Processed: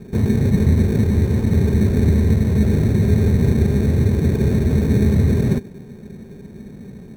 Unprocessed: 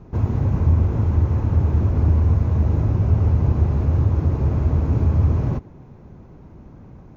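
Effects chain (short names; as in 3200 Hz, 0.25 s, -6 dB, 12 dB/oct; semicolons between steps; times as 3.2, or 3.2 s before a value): small resonant body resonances 210/400/1900 Hz, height 16 dB, ringing for 40 ms; in parallel at -6 dB: sample-and-hold 22×; on the sum: gain -6.5 dB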